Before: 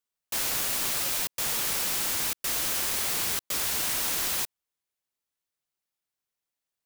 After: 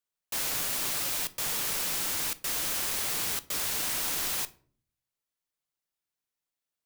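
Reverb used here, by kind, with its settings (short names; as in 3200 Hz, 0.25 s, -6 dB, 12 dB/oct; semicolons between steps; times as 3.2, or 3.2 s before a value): shoebox room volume 440 m³, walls furnished, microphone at 0.42 m; gain -2.5 dB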